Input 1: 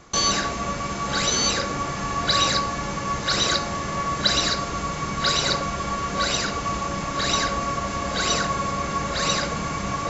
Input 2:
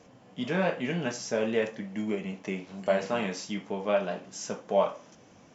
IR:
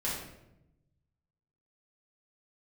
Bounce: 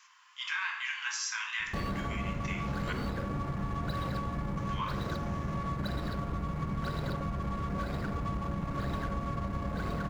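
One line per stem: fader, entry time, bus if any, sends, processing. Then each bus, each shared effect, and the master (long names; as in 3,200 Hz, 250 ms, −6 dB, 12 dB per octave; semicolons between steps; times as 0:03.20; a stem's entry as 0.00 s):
−8.0 dB, 1.60 s, no send, running median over 15 samples; bass and treble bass +11 dB, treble −8 dB
+2.0 dB, 0.00 s, muted 0:02.93–0:04.57, send −8 dB, Butterworth high-pass 1,000 Hz 72 dB per octave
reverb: on, RT60 0.85 s, pre-delay 6 ms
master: downward compressor, threshold −30 dBFS, peak gain reduction 7 dB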